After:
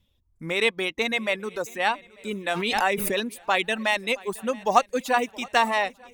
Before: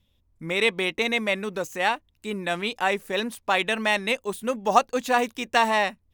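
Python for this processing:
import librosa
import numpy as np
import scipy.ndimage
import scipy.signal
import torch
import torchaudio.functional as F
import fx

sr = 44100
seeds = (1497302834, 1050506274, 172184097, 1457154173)

y = fx.dereverb_blind(x, sr, rt60_s=1.2)
y = fx.echo_swing(y, sr, ms=893, ratio=3, feedback_pct=35, wet_db=-23.0)
y = fx.pre_swell(y, sr, db_per_s=27.0, at=(2.48, 3.19))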